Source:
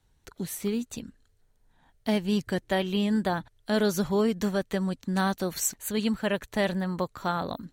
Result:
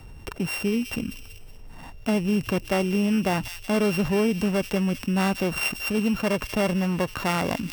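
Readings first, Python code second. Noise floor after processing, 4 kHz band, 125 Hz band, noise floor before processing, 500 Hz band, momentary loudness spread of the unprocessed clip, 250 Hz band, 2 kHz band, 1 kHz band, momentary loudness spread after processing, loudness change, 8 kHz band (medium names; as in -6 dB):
-42 dBFS, +3.0 dB, +5.0 dB, -67 dBFS, +2.5 dB, 8 LU, +4.0 dB, +5.0 dB, +2.0 dB, 7 LU, +3.5 dB, -2.5 dB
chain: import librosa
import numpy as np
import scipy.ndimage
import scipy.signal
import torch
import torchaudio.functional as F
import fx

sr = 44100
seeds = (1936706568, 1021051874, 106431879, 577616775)

y = np.r_[np.sort(x[:len(x) // 16 * 16].reshape(-1, 16), axis=1).ravel(), x[len(x) // 16 * 16:]]
y = fx.high_shelf(y, sr, hz=2600.0, db=-7.5)
y = fx.echo_wet_highpass(y, sr, ms=188, feedback_pct=37, hz=3400.0, wet_db=-13.5)
y = fx.env_flatten(y, sr, amount_pct=50)
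y = y * 10.0 ** (2.0 / 20.0)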